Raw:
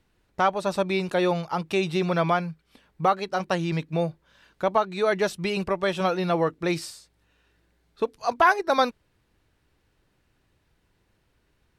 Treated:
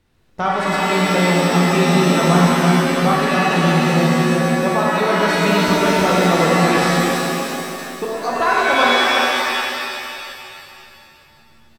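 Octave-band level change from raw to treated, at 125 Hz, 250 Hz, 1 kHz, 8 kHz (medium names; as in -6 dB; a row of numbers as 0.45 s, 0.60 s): +13.5 dB, +13.0 dB, +9.0 dB, +17.0 dB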